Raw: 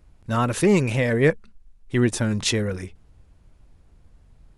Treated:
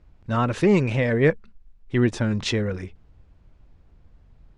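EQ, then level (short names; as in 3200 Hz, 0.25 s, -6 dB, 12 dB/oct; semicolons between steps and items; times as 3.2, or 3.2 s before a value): air absorption 120 m; 0.0 dB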